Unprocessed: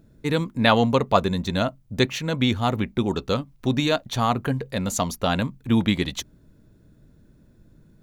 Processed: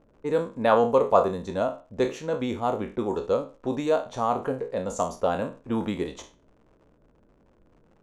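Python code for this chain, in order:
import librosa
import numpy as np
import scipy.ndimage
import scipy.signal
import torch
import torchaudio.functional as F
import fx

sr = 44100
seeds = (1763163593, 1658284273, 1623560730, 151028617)

y = fx.spec_trails(x, sr, decay_s=0.33)
y = fx.dmg_crackle(y, sr, seeds[0], per_s=110.0, level_db=-37.0)
y = fx.high_shelf(y, sr, hz=10000.0, db=-9.0)
y = fx.env_lowpass(y, sr, base_hz=2900.0, full_db=-16.5)
y = fx.graphic_eq(y, sr, hz=(125, 500, 1000, 2000, 4000, 8000), db=(-6, 10, 5, -4, -9, 5))
y = F.gain(torch.from_numpy(y), -8.5).numpy()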